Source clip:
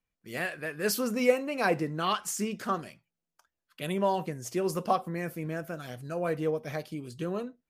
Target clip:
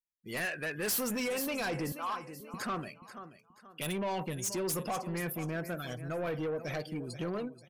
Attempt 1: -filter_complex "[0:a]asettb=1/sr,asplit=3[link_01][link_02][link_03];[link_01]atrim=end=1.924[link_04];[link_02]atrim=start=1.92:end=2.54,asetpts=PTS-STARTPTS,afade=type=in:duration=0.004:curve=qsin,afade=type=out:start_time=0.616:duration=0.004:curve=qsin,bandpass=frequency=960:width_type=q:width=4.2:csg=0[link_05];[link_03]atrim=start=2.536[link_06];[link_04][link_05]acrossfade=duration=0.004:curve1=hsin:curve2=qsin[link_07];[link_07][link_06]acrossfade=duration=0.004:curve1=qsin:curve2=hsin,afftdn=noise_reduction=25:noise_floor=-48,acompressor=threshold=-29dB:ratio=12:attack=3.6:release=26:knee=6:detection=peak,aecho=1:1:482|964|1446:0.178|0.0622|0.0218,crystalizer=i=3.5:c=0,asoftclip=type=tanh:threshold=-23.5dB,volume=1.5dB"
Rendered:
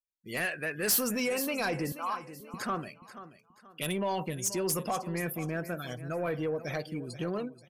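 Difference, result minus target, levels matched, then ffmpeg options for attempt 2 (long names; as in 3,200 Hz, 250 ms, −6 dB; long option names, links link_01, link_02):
soft clipping: distortion −4 dB
-filter_complex "[0:a]asettb=1/sr,asplit=3[link_01][link_02][link_03];[link_01]atrim=end=1.924[link_04];[link_02]atrim=start=1.92:end=2.54,asetpts=PTS-STARTPTS,afade=type=in:duration=0.004:curve=qsin,afade=type=out:start_time=0.616:duration=0.004:curve=qsin,bandpass=frequency=960:width_type=q:width=4.2:csg=0[link_05];[link_03]atrim=start=2.536[link_06];[link_04][link_05]acrossfade=duration=0.004:curve1=hsin:curve2=qsin[link_07];[link_07][link_06]acrossfade=duration=0.004:curve1=qsin:curve2=hsin,afftdn=noise_reduction=25:noise_floor=-48,acompressor=threshold=-29dB:ratio=12:attack=3.6:release=26:knee=6:detection=peak,aecho=1:1:482|964|1446:0.178|0.0622|0.0218,crystalizer=i=3.5:c=0,asoftclip=type=tanh:threshold=-31dB,volume=1.5dB"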